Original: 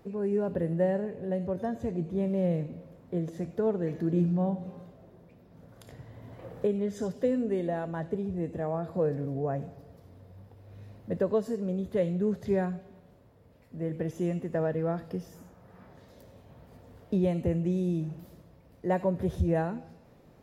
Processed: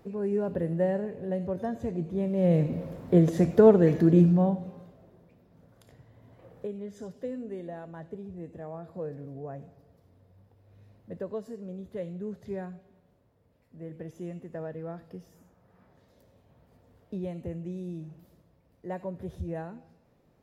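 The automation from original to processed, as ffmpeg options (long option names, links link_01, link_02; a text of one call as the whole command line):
ffmpeg -i in.wav -af "volume=11.5dB,afade=type=in:start_time=2.35:duration=0.49:silence=0.266073,afade=type=out:start_time=3.64:duration=1.07:silence=0.237137,afade=type=out:start_time=4.71:duration=1.35:silence=0.421697" out.wav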